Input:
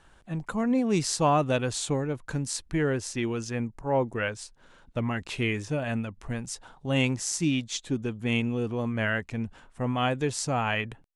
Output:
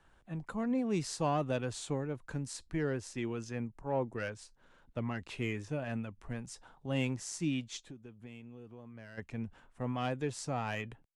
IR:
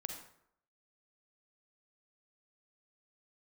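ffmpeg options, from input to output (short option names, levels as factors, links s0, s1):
-filter_complex "[0:a]acrossover=split=100|760|2900[s0][s1][s2][s3];[s2]asoftclip=type=tanh:threshold=0.0422[s4];[s3]flanger=delay=6.6:depth=1.9:regen=69:speed=0.57:shape=triangular[s5];[s0][s1][s4][s5]amix=inputs=4:normalize=0,asplit=3[s6][s7][s8];[s6]afade=t=out:st=7.8:d=0.02[s9];[s7]acompressor=threshold=0.01:ratio=6,afade=t=in:st=7.8:d=0.02,afade=t=out:st=9.17:d=0.02[s10];[s8]afade=t=in:st=9.17:d=0.02[s11];[s9][s10][s11]amix=inputs=3:normalize=0,volume=0.422"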